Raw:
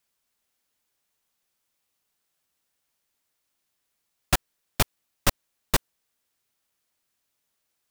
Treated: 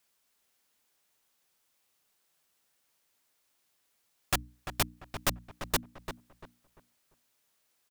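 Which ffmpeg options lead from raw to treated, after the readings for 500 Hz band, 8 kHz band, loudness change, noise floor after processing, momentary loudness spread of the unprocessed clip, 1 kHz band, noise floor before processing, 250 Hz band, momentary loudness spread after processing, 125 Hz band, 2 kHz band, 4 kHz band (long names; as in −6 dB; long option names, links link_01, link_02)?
−5.5 dB, −5.0 dB, −6.0 dB, −75 dBFS, 1 LU, −5.0 dB, −78 dBFS, −6.0 dB, 13 LU, −8.0 dB, −5.0 dB, −5.0 dB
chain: -filter_complex "[0:a]lowshelf=frequency=130:gain=-5.5,bandreject=frequency=60:width_type=h:width=6,bandreject=frequency=120:width_type=h:width=6,bandreject=frequency=180:width_type=h:width=6,bandreject=frequency=240:width_type=h:width=6,bandreject=frequency=300:width_type=h:width=6,asplit=2[link_01][link_02];[link_02]acompressor=threshold=-31dB:ratio=6,volume=-0.5dB[link_03];[link_01][link_03]amix=inputs=2:normalize=0,asoftclip=type=tanh:threshold=-18dB,asplit=2[link_04][link_05];[link_05]adelay=344,lowpass=frequency=2100:poles=1,volume=-8.5dB,asplit=2[link_06][link_07];[link_07]adelay=344,lowpass=frequency=2100:poles=1,volume=0.31,asplit=2[link_08][link_09];[link_09]adelay=344,lowpass=frequency=2100:poles=1,volume=0.31,asplit=2[link_10][link_11];[link_11]adelay=344,lowpass=frequency=2100:poles=1,volume=0.31[link_12];[link_04][link_06][link_08][link_10][link_12]amix=inputs=5:normalize=0,volume=-2.5dB"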